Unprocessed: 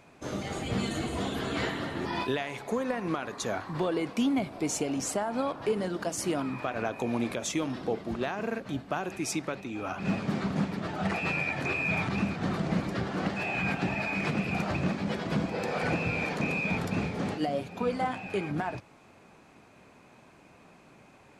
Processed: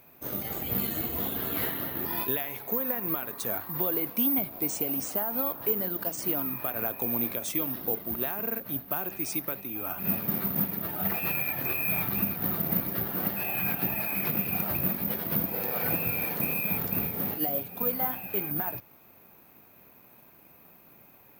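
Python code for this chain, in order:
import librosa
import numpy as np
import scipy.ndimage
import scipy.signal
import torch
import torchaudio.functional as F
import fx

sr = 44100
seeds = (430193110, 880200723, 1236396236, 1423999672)

y = (np.kron(scipy.signal.resample_poly(x, 1, 3), np.eye(3)[0]) * 3)[:len(x)]
y = y * librosa.db_to_amplitude(-4.0)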